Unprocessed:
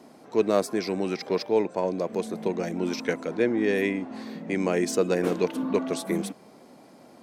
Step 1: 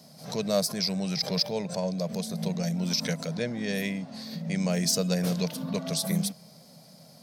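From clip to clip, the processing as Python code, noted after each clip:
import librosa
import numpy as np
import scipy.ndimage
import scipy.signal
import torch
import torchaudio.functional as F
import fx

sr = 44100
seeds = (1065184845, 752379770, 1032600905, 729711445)

y = fx.curve_eq(x, sr, hz=(100.0, 160.0, 330.0, 600.0, 870.0, 1200.0, 2700.0, 4900.0, 7400.0, 13000.0), db=(0, 11, -19, -1, -9, -8, -3, 12, 4, 11))
y = fx.pre_swell(y, sr, db_per_s=110.0)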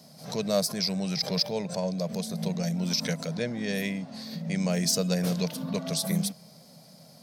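y = x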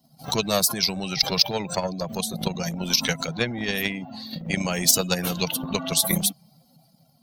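y = fx.bin_expand(x, sr, power=2.0)
y = fx.transient(y, sr, attack_db=9, sustain_db=5)
y = fx.spectral_comp(y, sr, ratio=2.0)
y = y * 10.0 ** (3.0 / 20.0)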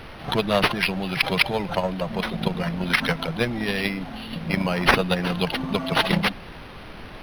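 y = fx.dmg_noise_colour(x, sr, seeds[0], colour='pink', level_db=-41.0)
y = np.interp(np.arange(len(y)), np.arange(len(y))[::6], y[::6])
y = y * 10.0 ** (2.5 / 20.0)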